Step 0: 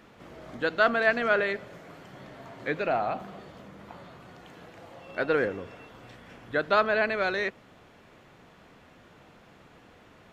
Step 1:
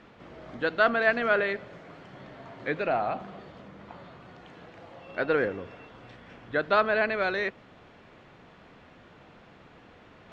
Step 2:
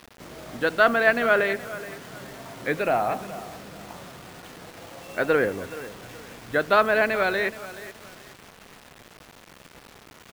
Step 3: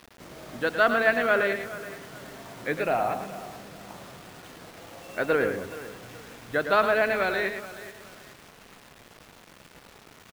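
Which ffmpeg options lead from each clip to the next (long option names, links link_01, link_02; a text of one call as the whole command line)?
ffmpeg -i in.wav -af "lowpass=4700,areverse,acompressor=mode=upward:threshold=-48dB:ratio=2.5,areverse" out.wav
ffmpeg -i in.wav -af "aecho=1:1:424|848|1272:0.158|0.0475|0.0143,acrusher=bits=7:mix=0:aa=0.000001,volume=4dB" out.wav
ffmpeg -i in.wav -af "aecho=1:1:109:0.398,volume=-3dB" out.wav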